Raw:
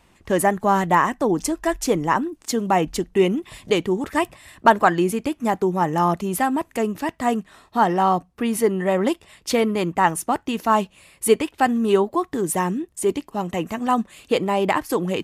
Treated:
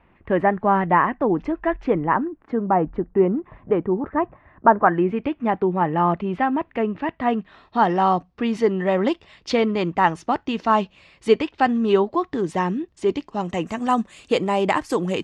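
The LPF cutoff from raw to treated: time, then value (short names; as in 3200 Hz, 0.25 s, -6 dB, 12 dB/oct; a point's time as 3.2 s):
LPF 24 dB/oct
1.79 s 2400 Hz
2.78 s 1500 Hz
4.75 s 1500 Hz
5.24 s 2900 Hz
7.05 s 2900 Hz
7.91 s 5100 Hz
13.05 s 5100 Hz
13.79 s 8400 Hz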